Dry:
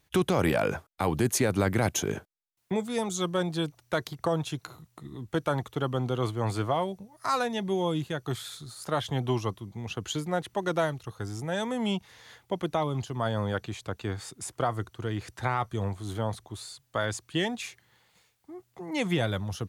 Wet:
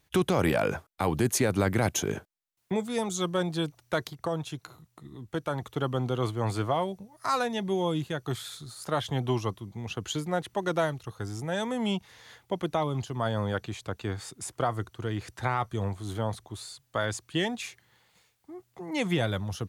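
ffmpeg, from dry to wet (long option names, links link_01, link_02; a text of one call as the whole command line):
ffmpeg -i in.wav -filter_complex "[0:a]asplit=3[link_01][link_02][link_03];[link_01]atrim=end=4.102[link_04];[link_02]atrim=start=4.098:end=5.622,asetpts=PTS-STARTPTS,volume=-3.5dB[link_05];[link_03]atrim=start=5.618[link_06];[link_04][link_05]acrossfade=duration=0.004:curve1=hsin:curve2=hsin[link_07];[link_07][link_06]acrossfade=duration=0.004:curve1=hsin:curve2=hsin" out.wav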